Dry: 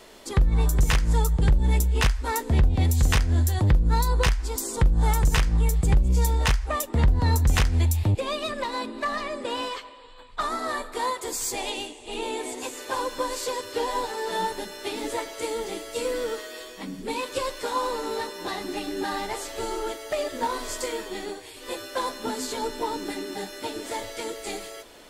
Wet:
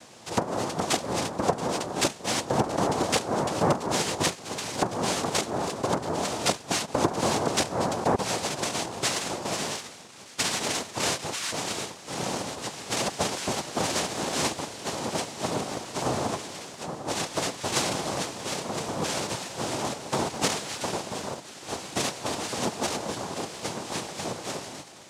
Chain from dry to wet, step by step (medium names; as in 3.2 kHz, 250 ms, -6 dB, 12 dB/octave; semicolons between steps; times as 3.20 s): band-passed feedback delay 677 ms, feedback 77%, band-pass 2.3 kHz, level -16 dB; noise-vocoded speech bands 2